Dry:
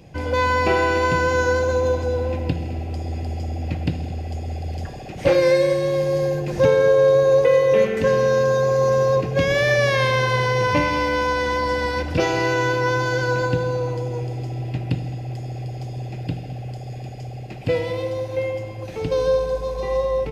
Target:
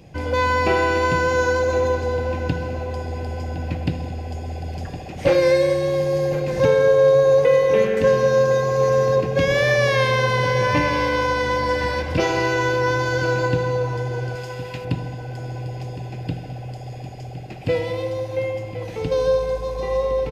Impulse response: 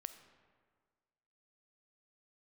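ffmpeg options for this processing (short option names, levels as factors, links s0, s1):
-filter_complex "[0:a]asettb=1/sr,asplit=3[s0][s1][s2];[s0]atrim=end=14.354[s3];[s1]atrim=start=14.35:end=14.85,asetpts=PTS-STARTPTS,afade=t=in:d=0.004:c=qsin,afade=t=out:st=0.496:d=0.004:c=qsin,tiltshelf=f=1100:g=-7.5[s4];[s2]atrim=start=14.846[s5];[s3][s4]acrossfade=d=0.004:c1=hsin:c2=qsin[s6];[s6][s5]acrossfade=d=0.004:c1=qsin:c2=hsin,asplit=2[s7][s8];[s8]adelay=1062,lowpass=f=4100:p=1,volume=0.251,asplit=2[s9][s10];[s10]adelay=1062,lowpass=f=4100:p=1,volume=0.38,asplit=2[s11][s12];[s12]adelay=1062,lowpass=f=4100:p=1,volume=0.38,asplit=2[s13][s14];[s14]adelay=1062,lowpass=f=4100:p=1,volume=0.38[s15];[s9][s11][s13][s15]amix=inputs=4:normalize=0[s16];[s7][s16]amix=inputs=2:normalize=0"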